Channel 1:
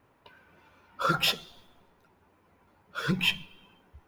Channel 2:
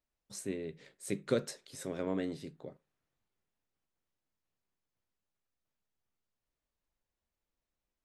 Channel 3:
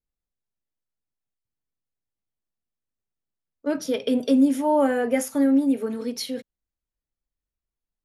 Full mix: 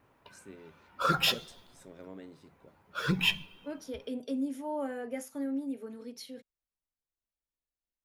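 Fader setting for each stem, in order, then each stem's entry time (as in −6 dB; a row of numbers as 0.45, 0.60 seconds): −1.0, −12.0, −15.0 decibels; 0.00, 0.00, 0.00 seconds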